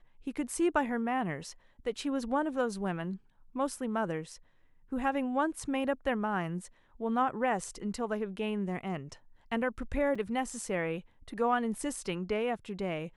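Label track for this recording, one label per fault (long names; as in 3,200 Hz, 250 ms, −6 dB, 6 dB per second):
10.150000	10.150000	drop-out 4.7 ms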